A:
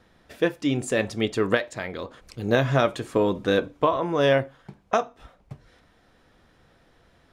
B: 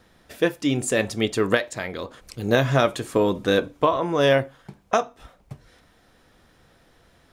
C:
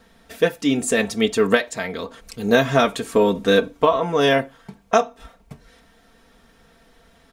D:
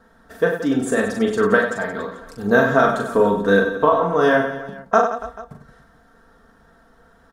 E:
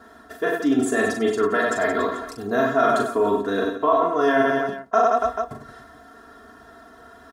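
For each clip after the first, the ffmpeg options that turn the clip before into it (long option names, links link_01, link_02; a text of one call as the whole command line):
ffmpeg -i in.wav -af "highshelf=frequency=6700:gain=9.5,volume=1.5dB" out.wav
ffmpeg -i in.wav -af "aecho=1:1:4.4:0.67,volume=1.5dB" out.wav
ffmpeg -i in.wav -filter_complex "[0:a]highshelf=frequency=1900:width_type=q:width=3:gain=-7,asplit=2[link_01][link_02];[link_02]aecho=0:1:40|96|174.4|284.2|437.8:0.631|0.398|0.251|0.158|0.1[link_03];[link_01][link_03]amix=inputs=2:normalize=0,volume=-1.5dB" out.wav
ffmpeg -i in.wav -af "areverse,acompressor=threshold=-25dB:ratio=6,areverse,highpass=99,aecho=1:1:2.9:0.8,volume=6dB" out.wav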